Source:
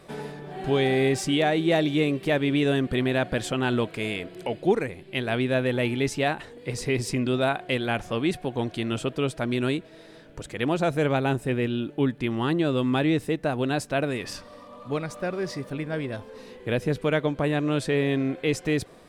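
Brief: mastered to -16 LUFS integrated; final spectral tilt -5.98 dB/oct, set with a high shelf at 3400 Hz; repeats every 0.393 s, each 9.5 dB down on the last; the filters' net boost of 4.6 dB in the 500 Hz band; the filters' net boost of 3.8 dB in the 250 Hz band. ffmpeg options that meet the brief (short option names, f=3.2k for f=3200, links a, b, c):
-af "equalizer=f=250:t=o:g=3,equalizer=f=500:t=o:g=5,highshelf=f=3.4k:g=-5,aecho=1:1:393|786|1179|1572:0.335|0.111|0.0365|0.012,volume=6.5dB"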